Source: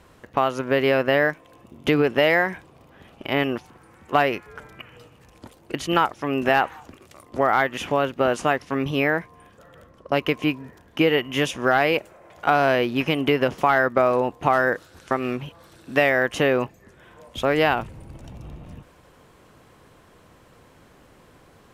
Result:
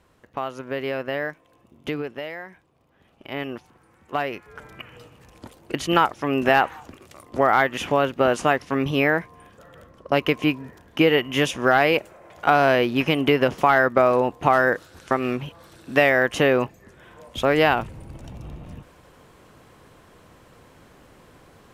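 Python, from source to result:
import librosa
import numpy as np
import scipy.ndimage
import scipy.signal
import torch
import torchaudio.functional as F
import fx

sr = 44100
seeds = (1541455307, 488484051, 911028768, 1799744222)

y = fx.gain(x, sr, db=fx.line((1.89, -8.0), (2.36, -17.0), (3.56, -6.5), (4.29, -6.5), (4.73, 1.5)))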